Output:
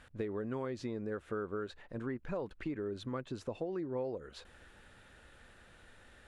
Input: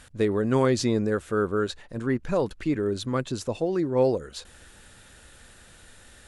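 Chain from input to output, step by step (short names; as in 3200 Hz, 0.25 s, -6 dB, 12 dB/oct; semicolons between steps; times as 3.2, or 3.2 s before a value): compressor 6:1, threshold -29 dBFS, peak gain reduction 12 dB; tone controls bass -3 dB, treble -14 dB; gain -5 dB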